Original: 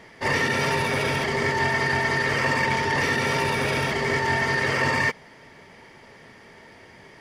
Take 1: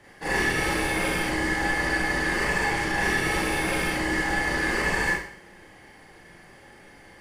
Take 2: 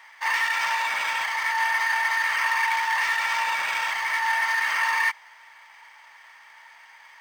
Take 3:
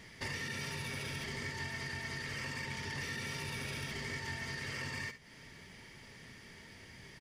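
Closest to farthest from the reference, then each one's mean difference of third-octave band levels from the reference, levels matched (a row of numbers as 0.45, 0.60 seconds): 1, 3, 2; 4.0, 7.0, 11.0 decibels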